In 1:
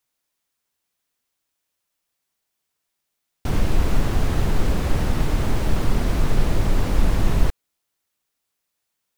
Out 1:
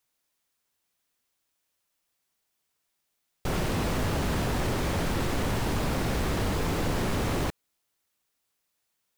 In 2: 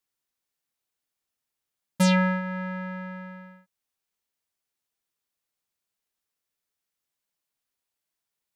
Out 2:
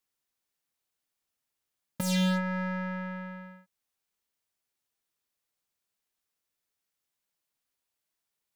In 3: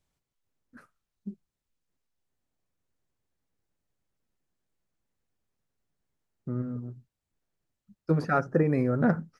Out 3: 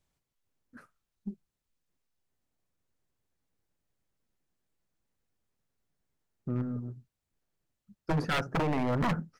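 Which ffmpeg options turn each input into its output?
ffmpeg -i in.wav -af "aeval=exprs='0.075*(abs(mod(val(0)/0.075+3,4)-2)-1)':channel_layout=same,aeval=exprs='0.0794*(cos(1*acos(clip(val(0)/0.0794,-1,1)))-cos(1*PI/2))+0.00224*(cos(6*acos(clip(val(0)/0.0794,-1,1)))-cos(6*PI/2))':channel_layout=same" out.wav

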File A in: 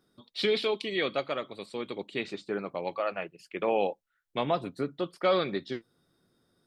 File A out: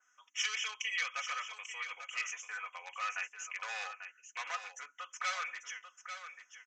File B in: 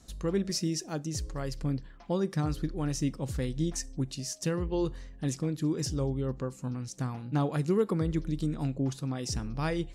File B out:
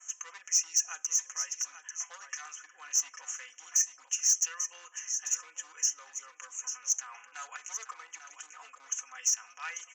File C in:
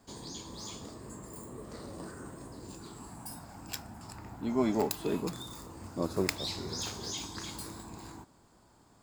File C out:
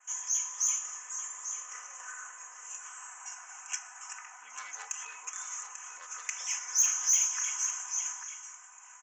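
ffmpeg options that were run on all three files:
ffmpeg -i in.wav -af "asuperstop=centerf=4200:order=8:qfactor=1.5,aresample=16000,volume=23dB,asoftclip=hard,volume=-23dB,aresample=44100,alimiter=level_in=7dB:limit=-24dB:level=0:latency=1:release=116,volume=-7dB,aeval=exprs='val(0)+0.00251*(sin(2*PI*60*n/s)+sin(2*PI*2*60*n/s)/2+sin(2*PI*3*60*n/s)/3+sin(2*PI*4*60*n/s)/4+sin(2*PI*5*60*n/s)/5)':channel_layout=same,equalizer=frequency=6300:width_type=o:width=0.37:gain=12,aecho=1:1:4:0.73,aecho=1:1:842:0.335,adynamicequalizer=threshold=0.00282:dfrequency=4900:dqfactor=1.5:tfrequency=4900:tqfactor=1.5:attack=5:release=100:ratio=0.375:range=2:mode=boostabove:tftype=bell,aeval=exprs='0.133*sin(PI/2*1.41*val(0)/0.133)':channel_layout=same,highpass=frequency=1200:width=0.5412,highpass=frequency=1200:width=1.3066" out.wav

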